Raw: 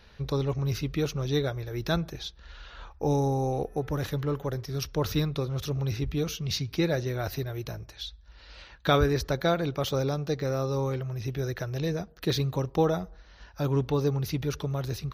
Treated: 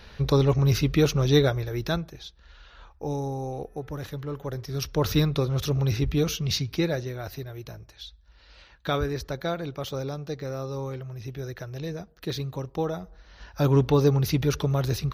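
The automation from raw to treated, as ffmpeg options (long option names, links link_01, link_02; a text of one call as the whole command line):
ffmpeg -i in.wav -af "volume=27dB,afade=type=out:start_time=1.44:duration=0.64:silence=0.251189,afade=type=in:start_time=4.29:duration=0.94:silence=0.334965,afade=type=out:start_time=6.34:duration=0.83:silence=0.354813,afade=type=in:start_time=13.01:duration=0.62:silence=0.316228" out.wav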